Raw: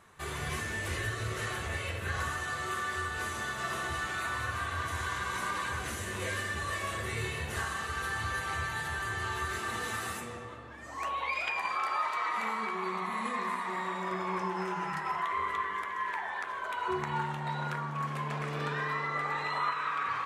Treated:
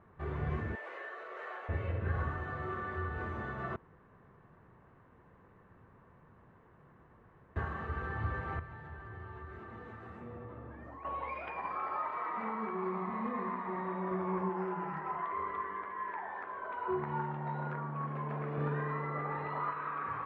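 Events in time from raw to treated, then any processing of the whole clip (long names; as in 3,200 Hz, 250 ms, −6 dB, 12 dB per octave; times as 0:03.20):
0:00.75–0:01.69: high-pass filter 540 Hz 24 dB per octave
0:03.76–0:07.56: fill with room tone
0:08.59–0:11.05: downward compressor 5 to 1, threshold −42 dBFS
0:14.49–0:18.58: low-shelf EQ 140 Hz −11 dB
whole clip: Chebyshev low-pass filter 1,800 Hz, order 2; tilt shelving filter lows +8.5 dB; level −3.5 dB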